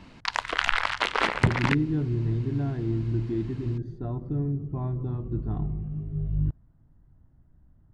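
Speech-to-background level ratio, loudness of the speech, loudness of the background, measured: -3.0 dB, -29.5 LUFS, -26.5 LUFS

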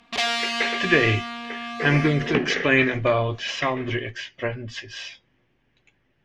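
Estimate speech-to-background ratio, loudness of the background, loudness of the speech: 5.0 dB, -28.0 LUFS, -23.0 LUFS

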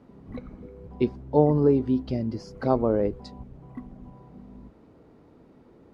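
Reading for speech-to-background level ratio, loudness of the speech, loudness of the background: 20.0 dB, -24.5 LUFS, -44.5 LUFS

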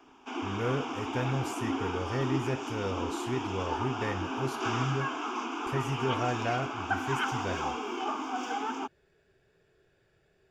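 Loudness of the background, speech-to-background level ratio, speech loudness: -34.5 LUFS, -0.5 dB, -35.0 LUFS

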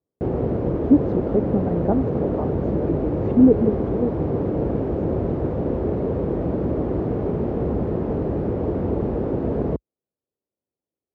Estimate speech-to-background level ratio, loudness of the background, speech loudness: 1.5 dB, -24.0 LUFS, -22.5 LUFS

